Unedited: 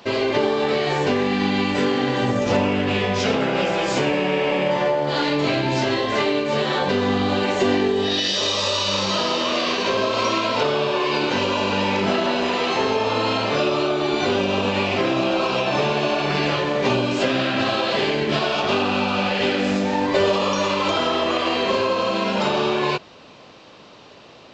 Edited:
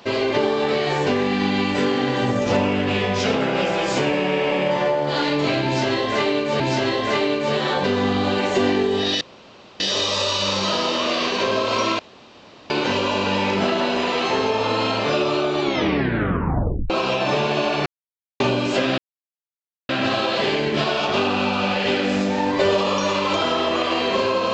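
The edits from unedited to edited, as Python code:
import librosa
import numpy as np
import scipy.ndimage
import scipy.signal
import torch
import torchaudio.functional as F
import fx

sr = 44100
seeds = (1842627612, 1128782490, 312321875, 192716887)

y = fx.edit(x, sr, fx.repeat(start_s=5.65, length_s=0.95, count=2),
    fx.insert_room_tone(at_s=8.26, length_s=0.59),
    fx.room_tone_fill(start_s=10.45, length_s=0.71),
    fx.tape_stop(start_s=14.08, length_s=1.28),
    fx.silence(start_s=16.32, length_s=0.54),
    fx.insert_silence(at_s=17.44, length_s=0.91), tone=tone)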